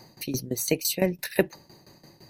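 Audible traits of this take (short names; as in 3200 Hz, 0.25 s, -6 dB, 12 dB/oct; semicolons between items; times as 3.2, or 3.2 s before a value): tremolo saw down 5.9 Hz, depth 85%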